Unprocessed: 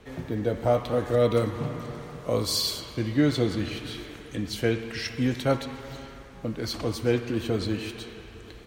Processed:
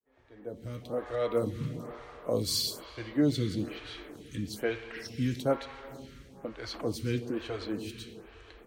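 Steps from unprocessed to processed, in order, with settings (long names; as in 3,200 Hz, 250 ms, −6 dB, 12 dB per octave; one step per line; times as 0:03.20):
fade in at the beginning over 1.57 s
phaser with staggered stages 1.1 Hz
level −2.5 dB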